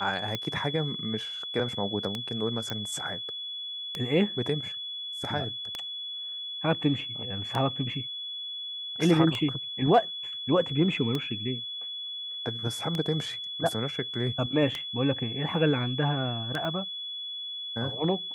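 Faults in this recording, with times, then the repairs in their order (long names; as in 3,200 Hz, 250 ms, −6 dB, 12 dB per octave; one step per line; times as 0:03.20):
scratch tick 33 1/3 rpm −16 dBFS
whistle 3,400 Hz −34 dBFS
0:02.70: click −17 dBFS
0:16.65: click −22 dBFS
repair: click removal
notch filter 3,400 Hz, Q 30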